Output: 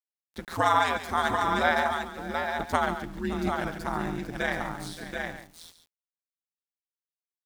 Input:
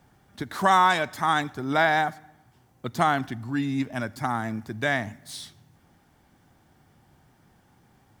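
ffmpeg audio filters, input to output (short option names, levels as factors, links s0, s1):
-filter_complex "[0:a]asplit=2[s0][s1];[s1]aecho=0:1:146|625|804:0.15|0.178|0.596[s2];[s0][s2]amix=inputs=2:normalize=0,aeval=exprs='val(0)*sin(2*PI*83*n/s)':c=same,atempo=1.1,aeval=exprs='val(0)*gte(abs(val(0)),0.00531)':c=same,asplit=2[s3][s4];[s4]aecho=0:1:142:0.266[s5];[s3][s5]amix=inputs=2:normalize=0,volume=0.891"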